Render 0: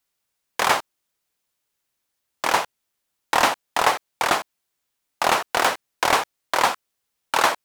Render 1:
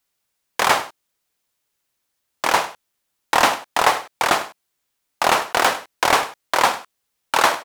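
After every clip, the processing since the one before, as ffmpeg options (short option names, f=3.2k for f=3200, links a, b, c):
-af "aecho=1:1:102:0.178,volume=2.5dB"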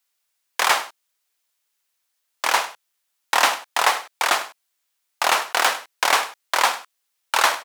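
-af "highpass=f=1.1k:p=1,volume=1dB"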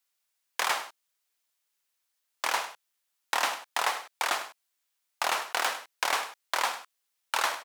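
-af "acompressor=threshold=-22dB:ratio=2,volume=-5dB"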